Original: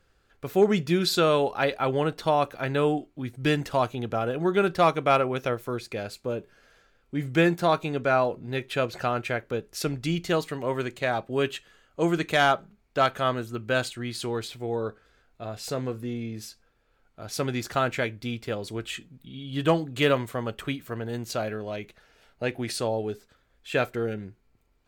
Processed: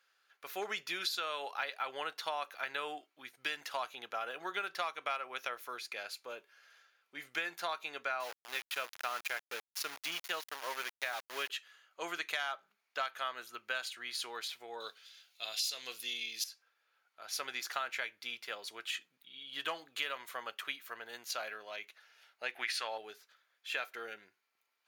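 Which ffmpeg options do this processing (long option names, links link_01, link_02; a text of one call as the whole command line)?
ffmpeg -i in.wav -filter_complex "[0:a]asettb=1/sr,asplit=3[link_01][link_02][link_03];[link_01]atrim=end=8.204[link_04];[link_02]atrim=start=8.2:end=11.5,asetpts=PTS-STARTPTS,afade=type=in:duration=0.004:curve=qsin,afade=type=out:start_time=3.296:duration=0.004:curve=qsin,aeval=exprs='val(0)*gte(abs(val(0)),0.0266)':channel_layout=same[link_05];[link_03]atrim=start=11.496[link_06];[link_04][link_05]acrossfade=duration=0.004:curve1=hsin:curve2=qsin[link_07];[link_07][link_06]acrossfade=duration=0.004:curve1=qsin:curve2=hsin,asettb=1/sr,asplit=3[link_08][link_09][link_10];[link_08]atrim=end=14.804[link_11];[link_09]atrim=start=14.8:end=16.44,asetpts=PTS-STARTPTS,afade=type=in:duration=0.004:curve=qsin,afade=type=out:start_time=1.636:duration=0.004:curve=qsin,highshelf=frequency=2200:width_type=q:width=1.5:gain=14[link_12];[link_10]atrim=start=16.436[link_13];[link_11][link_12]acrossfade=duration=0.004:curve1=hsin:curve2=qsin[link_14];[link_14][link_13]acrossfade=duration=0.004:curve1=qsin:curve2=hsin,asettb=1/sr,asplit=3[link_15][link_16][link_17];[link_15]atrim=end=22.564[link_18];[link_16]atrim=start=22.56:end=22.98,asetpts=PTS-STARTPTS,afade=type=in:duration=0.004:curve=qsin,afade=type=out:start_time=0.416:duration=0.004:curve=qsin,equalizer=frequency=1900:width_type=o:width=2.1:gain=14[link_19];[link_17]atrim=start=22.976[link_20];[link_18][link_19]acrossfade=duration=0.004:curve1=hsin:curve2=qsin[link_21];[link_21][link_20]acrossfade=duration=0.004:curve1=qsin:curve2=hsin,highpass=1200,equalizer=frequency=8000:width=8:gain=-14,acompressor=threshold=-31dB:ratio=10,volume=-1.5dB" out.wav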